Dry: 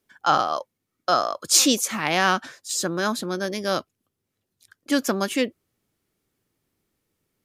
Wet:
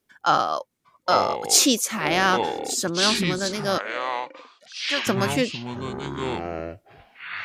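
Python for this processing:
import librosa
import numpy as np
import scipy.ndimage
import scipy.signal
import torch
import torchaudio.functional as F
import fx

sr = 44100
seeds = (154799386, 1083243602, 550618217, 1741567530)

y = fx.echo_pitch(x, sr, ms=709, semitones=-7, count=3, db_per_echo=-6.0)
y = fx.bandpass_edges(y, sr, low_hz=630.0, high_hz=6200.0, at=(3.78, 5.07))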